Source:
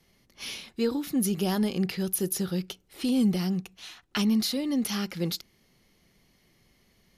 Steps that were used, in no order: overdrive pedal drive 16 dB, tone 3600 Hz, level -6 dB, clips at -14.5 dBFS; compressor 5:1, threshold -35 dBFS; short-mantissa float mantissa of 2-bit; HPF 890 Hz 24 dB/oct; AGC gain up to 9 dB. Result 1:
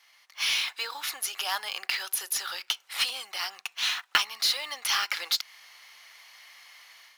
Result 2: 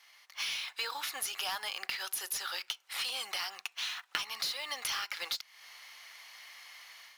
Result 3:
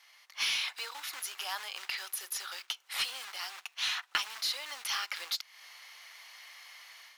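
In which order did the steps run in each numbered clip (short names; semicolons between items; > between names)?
compressor > HPF > overdrive pedal > short-mantissa float > AGC; HPF > overdrive pedal > AGC > short-mantissa float > compressor; AGC > short-mantissa float > compressor > HPF > overdrive pedal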